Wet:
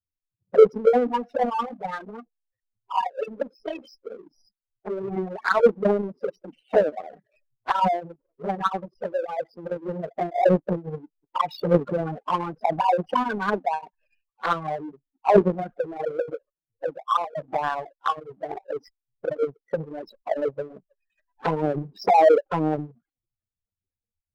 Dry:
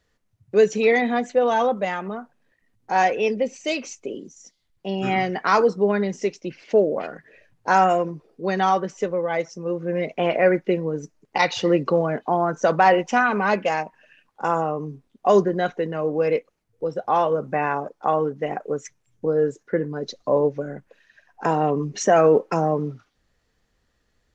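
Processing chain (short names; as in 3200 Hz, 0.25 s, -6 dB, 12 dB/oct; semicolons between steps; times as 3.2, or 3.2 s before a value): nonlinear frequency compression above 3800 Hz 1.5:1; spectral gate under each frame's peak -10 dB strong; formant shift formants +5 st; envelope flanger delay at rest 10.4 ms, full sweep at -16 dBFS; power-law curve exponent 1.4; gain +7 dB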